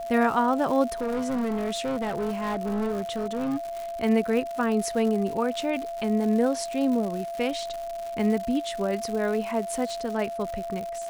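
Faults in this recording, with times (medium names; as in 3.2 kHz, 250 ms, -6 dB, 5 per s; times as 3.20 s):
crackle 190 per s -31 dBFS
whine 680 Hz -31 dBFS
0.90–3.69 s: clipped -24.5 dBFS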